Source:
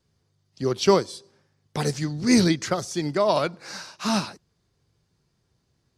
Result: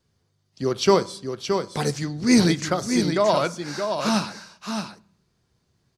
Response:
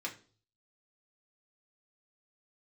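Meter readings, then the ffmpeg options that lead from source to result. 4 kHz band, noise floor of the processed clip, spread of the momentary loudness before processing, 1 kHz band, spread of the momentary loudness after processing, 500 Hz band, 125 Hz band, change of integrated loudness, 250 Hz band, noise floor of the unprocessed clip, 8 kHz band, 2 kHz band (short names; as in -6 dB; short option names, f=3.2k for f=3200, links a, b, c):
+2.0 dB, -70 dBFS, 18 LU, +2.5 dB, 13 LU, +2.0 dB, +1.0 dB, +0.5 dB, +2.0 dB, -72 dBFS, +1.5 dB, +2.5 dB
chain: -filter_complex "[0:a]aecho=1:1:621:0.473,asplit=2[a][b];[1:a]atrim=start_sample=2205,asetrate=27783,aresample=44100[c];[b][c]afir=irnorm=-1:irlink=0,volume=-16dB[d];[a][d]amix=inputs=2:normalize=0"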